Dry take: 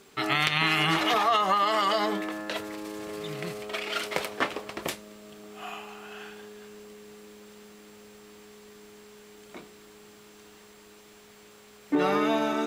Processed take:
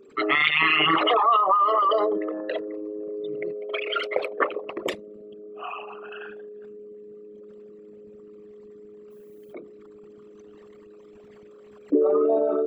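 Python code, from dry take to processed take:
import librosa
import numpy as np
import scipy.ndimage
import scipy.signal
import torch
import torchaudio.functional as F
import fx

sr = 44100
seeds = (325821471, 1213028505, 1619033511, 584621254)

y = fx.envelope_sharpen(x, sr, power=3.0)
y = fx.dmg_noise_colour(y, sr, seeds[0], colour='violet', level_db=-73.0, at=(9.1, 9.52), fade=0.02)
y = y * librosa.db_to_amplitude(4.5)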